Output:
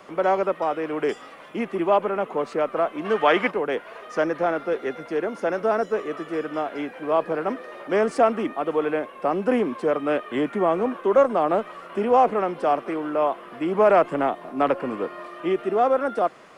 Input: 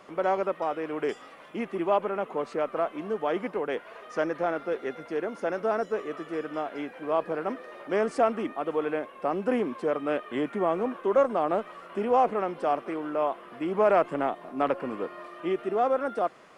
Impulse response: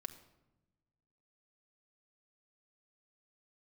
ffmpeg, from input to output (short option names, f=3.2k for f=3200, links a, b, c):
-filter_complex "[0:a]acrossover=split=250|800|3800[a][b][c][d];[d]acrusher=bits=6:mode=log:mix=0:aa=0.000001[e];[a][b][c][e]amix=inputs=4:normalize=0,asplit=3[f][g][h];[f]afade=t=out:st=3.04:d=0.02[i];[g]equalizer=f=2.4k:w=0.39:g=12,afade=t=in:st=3.04:d=0.02,afade=t=out:st=3.5:d=0.02[j];[h]afade=t=in:st=3.5:d=0.02[k];[i][j][k]amix=inputs=3:normalize=0,volume=5dB"